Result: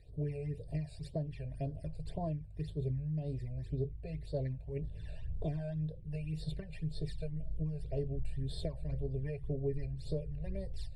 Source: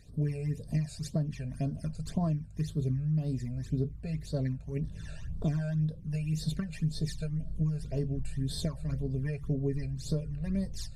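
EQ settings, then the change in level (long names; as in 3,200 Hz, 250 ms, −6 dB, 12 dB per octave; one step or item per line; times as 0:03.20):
moving average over 7 samples
phaser with its sweep stopped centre 530 Hz, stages 4
0.0 dB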